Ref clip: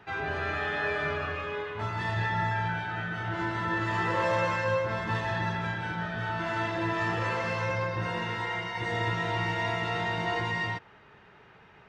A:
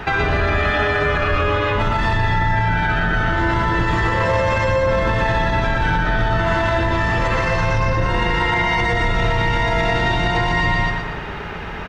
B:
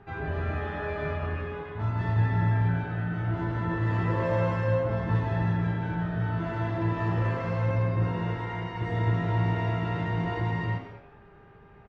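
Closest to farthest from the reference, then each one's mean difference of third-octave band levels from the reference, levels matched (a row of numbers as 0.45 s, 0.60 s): A, B; 3.5 dB, 6.5 dB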